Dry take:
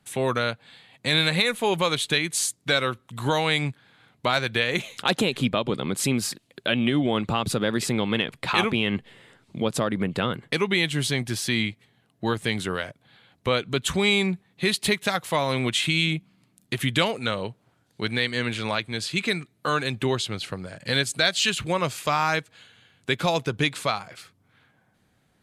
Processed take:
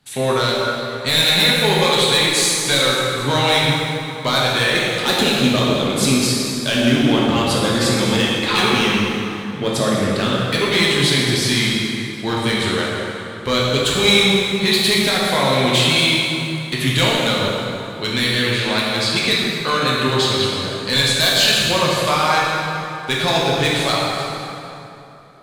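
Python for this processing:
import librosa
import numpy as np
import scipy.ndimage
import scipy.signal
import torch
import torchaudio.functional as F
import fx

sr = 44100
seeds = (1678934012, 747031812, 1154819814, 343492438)

y = fx.peak_eq(x, sr, hz=4200.0, db=7.5, octaves=0.77)
y = np.clip(y, -10.0 ** (-15.0 / 20.0), 10.0 ** (-15.0 / 20.0))
y = fx.rev_plate(y, sr, seeds[0], rt60_s=3.1, hf_ratio=0.65, predelay_ms=0, drr_db=-5.5)
y = y * librosa.db_to_amplitude(1.5)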